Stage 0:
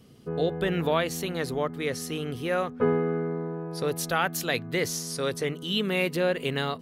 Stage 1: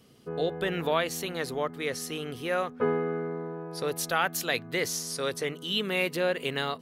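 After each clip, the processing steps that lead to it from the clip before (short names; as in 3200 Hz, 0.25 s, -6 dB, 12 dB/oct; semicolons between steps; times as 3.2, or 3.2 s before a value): low shelf 280 Hz -8.5 dB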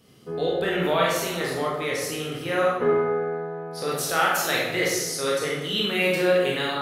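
reverb RT60 1.1 s, pre-delay 18 ms, DRR -4.5 dB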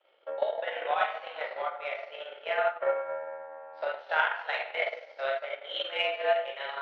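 mistuned SSB +130 Hz 380–3100 Hz; transient shaper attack +11 dB, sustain -9 dB; gain -8.5 dB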